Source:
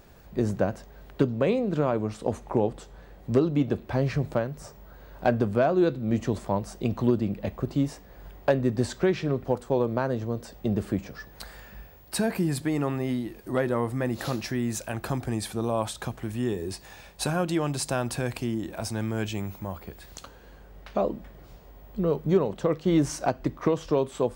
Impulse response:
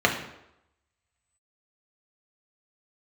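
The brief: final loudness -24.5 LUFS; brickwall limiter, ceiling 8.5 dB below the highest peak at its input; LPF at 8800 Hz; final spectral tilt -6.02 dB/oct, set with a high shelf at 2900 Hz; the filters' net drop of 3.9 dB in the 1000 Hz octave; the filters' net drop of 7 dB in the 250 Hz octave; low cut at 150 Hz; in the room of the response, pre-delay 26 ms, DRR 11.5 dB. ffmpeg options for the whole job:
-filter_complex "[0:a]highpass=150,lowpass=8.8k,equalizer=f=250:t=o:g=-8.5,equalizer=f=1k:t=o:g=-4,highshelf=f=2.9k:g=-6.5,alimiter=limit=-20.5dB:level=0:latency=1,asplit=2[a][b];[1:a]atrim=start_sample=2205,adelay=26[c];[b][c]afir=irnorm=-1:irlink=0,volume=-29dB[d];[a][d]amix=inputs=2:normalize=0,volume=9.5dB"

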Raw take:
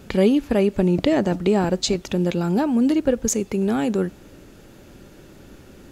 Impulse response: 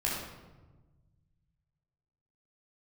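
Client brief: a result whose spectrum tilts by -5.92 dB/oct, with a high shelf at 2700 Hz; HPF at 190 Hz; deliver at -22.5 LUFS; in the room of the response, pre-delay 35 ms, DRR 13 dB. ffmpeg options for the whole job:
-filter_complex "[0:a]highpass=190,highshelf=f=2.7k:g=-5,asplit=2[a][b];[1:a]atrim=start_sample=2205,adelay=35[c];[b][c]afir=irnorm=-1:irlink=0,volume=-20dB[d];[a][d]amix=inputs=2:normalize=0,volume=-0.5dB"

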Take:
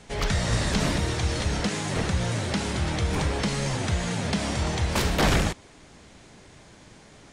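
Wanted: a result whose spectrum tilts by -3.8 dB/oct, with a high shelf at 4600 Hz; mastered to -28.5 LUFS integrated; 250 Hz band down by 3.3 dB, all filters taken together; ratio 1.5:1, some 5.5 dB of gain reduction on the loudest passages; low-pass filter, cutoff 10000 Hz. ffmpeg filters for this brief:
-af "lowpass=10k,equalizer=f=250:t=o:g=-5,highshelf=f=4.6k:g=4.5,acompressor=threshold=-34dB:ratio=1.5,volume=2dB"

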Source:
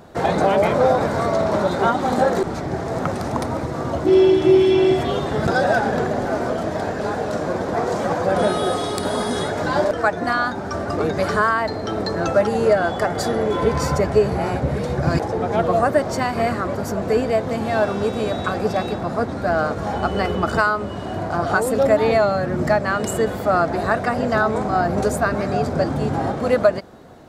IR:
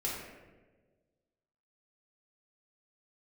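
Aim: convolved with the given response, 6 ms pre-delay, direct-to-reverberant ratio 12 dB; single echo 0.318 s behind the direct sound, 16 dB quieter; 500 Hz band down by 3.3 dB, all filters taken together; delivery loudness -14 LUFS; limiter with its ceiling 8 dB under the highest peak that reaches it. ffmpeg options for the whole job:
-filter_complex "[0:a]equalizer=f=500:t=o:g=-4.5,alimiter=limit=-13dB:level=0:latency=1,aecho=1:1:318:0.158,asplit=2[a][b];[1:a]atrim=start_sample=2205,adelay=6[c];[b][c]afir=irnorm=-1:irlink=0,volume=-16dB[d];[a][d]amix=inputs=2:normalize=0,volume=9dB"

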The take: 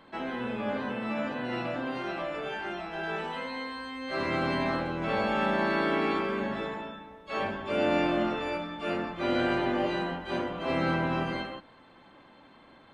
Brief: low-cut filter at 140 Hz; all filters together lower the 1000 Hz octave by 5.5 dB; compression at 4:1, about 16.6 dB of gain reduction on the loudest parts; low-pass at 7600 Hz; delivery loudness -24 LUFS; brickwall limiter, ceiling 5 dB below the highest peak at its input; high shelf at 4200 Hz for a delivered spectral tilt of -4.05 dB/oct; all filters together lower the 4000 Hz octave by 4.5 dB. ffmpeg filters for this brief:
-af "highpass=140,lowpass=7.6k,equalizer=f=1k:t=o:g=-7,equalizer=f=4k:t=o:g=-3.5,highshelf=f=4.2k:g=-3.5,acompressor=threshold=-46dB:ratio=4,volume=24dB,alimiter=limit=-14.5dB:level=0:latency=1"

